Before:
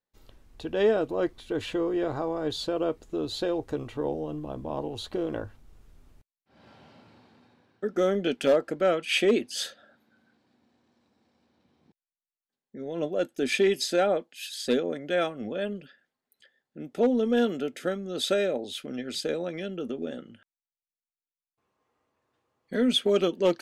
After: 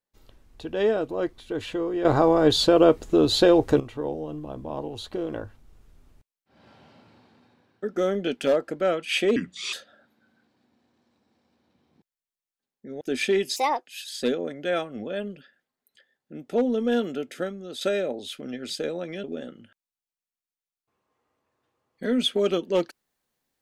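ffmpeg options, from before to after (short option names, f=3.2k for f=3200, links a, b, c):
-filter_complex "[0:a]asplit=10[a][b][c][d][e][f][g][h][i][j];[a]atrim=end=2.052[k];[b]atrim=start=2.048:end=3.802,asetpts=PTS-STARTPTS,volume=11.5dB[l];[c]atrim=start=3.798:end=9.364[m];[d]atrim=start=9.36:end=9.63,asetpts=PTS-STARTPTS,asetrate=32193,aresample=44100[n];[e]atrim=start=9.626:end=12.912[o];[f]atrim=start=13.318:end=13.874[p];[g]atrim=start=13.87:end=14.3,asetpts=PTS-STARTPTS,asetrate=65709,aresample=44100[q];[h]atrim=start=14.296:end=18.26,asetpts=PTS-STARTPTS,afade=t=out:st=3.404:d=0.56:c=qsin:silence=0.354813[r];[i]atrim=start=18.26:end=19.692,asetpts=PTS-STARTPTS,afade=t=in:d=0.004:c=hsin:silence=0.354813[s];[j]atrim=start=19.938[t];[k][l]acrossfade=d=0.004:c1=hsin:c2=hsin[u];[u][m]acrossfade=d=0.004:c1=hsin:c2=hsin[v];[v][n]acrossfade=d=0.004:c1=hsin:c2=hsin[w];[w][o]acrossfade=d=0.004:c1=hsin:c2=hsin[x];[x][p]acrossfade=d=0.004:c1=hsin:c2=hsin[y];[y][q]acrossfade=d=0.004:c1=hsin:c2=hsin[z];[r][s]concat=n=2:v=0:a=1[aa];[z][aa]acrossfade=d=0.004:c1=hsin:c2=hsin[ab];[ab][t]acrossfade=d=0.004:c1=hsin:c2=hsin"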